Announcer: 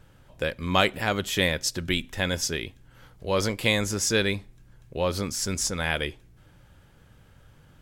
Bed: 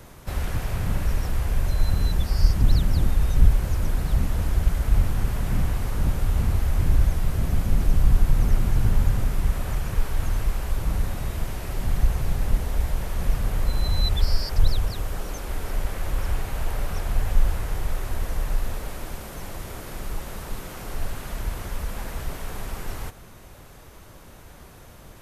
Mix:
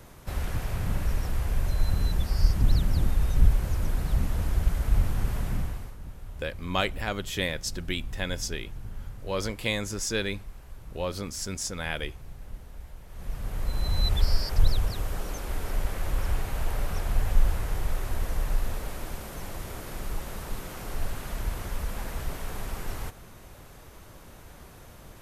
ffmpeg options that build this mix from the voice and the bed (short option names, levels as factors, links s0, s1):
-filter_complex "[0:a]adelay=6000,volume=0.531[s0];[1:a]volume=4.73,afade=t=out:st=5.39:d=0.58:silence=0.16788,afade=t=in:st=13.07:d=1.06:silence=0.141254[s1];[s0][s1]amix=inputs=2:normalize=0"